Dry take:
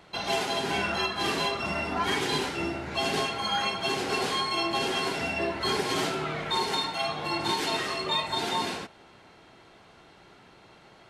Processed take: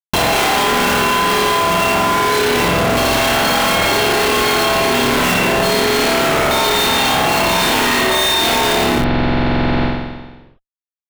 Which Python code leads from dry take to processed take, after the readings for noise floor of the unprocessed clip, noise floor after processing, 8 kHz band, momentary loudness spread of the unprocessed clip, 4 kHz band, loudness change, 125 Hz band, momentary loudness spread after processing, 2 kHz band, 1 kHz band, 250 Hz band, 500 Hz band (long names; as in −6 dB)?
−55 dBFS, below −85 dBFS, +18.0 dB, 3 LU, +13.0 dB, +14.5 dB, +17.0 dB, 4 LU, +15.5 dB, +15.0 dB, +15.5 dB, +15.5 dB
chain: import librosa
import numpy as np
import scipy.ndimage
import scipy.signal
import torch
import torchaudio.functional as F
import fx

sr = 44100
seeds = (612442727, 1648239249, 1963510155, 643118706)

p1 = fx.high_shelf(x, sr, hz=5800.0, db=2.5)
p2 = fx.rider(p1, sr, range_db=10, speed_s=0.5)
p3 = p1 + F.gain(torch.from_numpy(p2), 2.0).numpy()
p4 = fx.cheby_harmonics(p3, sr, harmonics=(5,), levels_db=(-31,), full_scale_db=-9.0)
p5 = p4 + fx.room_flutter(p4, sr, wall_m=4.9, rt60_s=1.1, dry=0)
p6 = fx.schmitt(p5, sr, flips_db=-23.5)
p7 = fx.rev_spring(p6, sr, rt60_s=1.3, pass_ms=(45,), chirp_ms=35, drr_db=-1.5)
p8 = fx.env_flatten(p7, sr, amount_pct=100)
y = F.gain(torch.from_numpy(p8), -3.5).numpy()